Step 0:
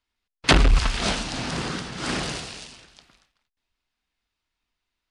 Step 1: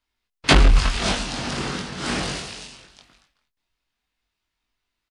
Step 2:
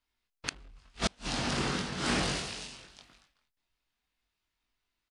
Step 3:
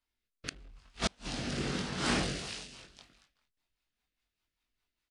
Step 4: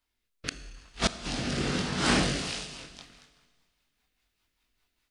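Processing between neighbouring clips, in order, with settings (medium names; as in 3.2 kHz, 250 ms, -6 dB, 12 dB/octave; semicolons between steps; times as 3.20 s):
doubling 21 ms -3 dB
inverted gate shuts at -11 dBFS, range -36 dB; trim -4 dB
rotary cabinet horn 0.85 Hz, later 5 Hz, at 2.00 s
Schroeder reverb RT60 1.6 s, combs from 25 ms, DRR 12 dB; gain riding 2 s; trim +5.5 dB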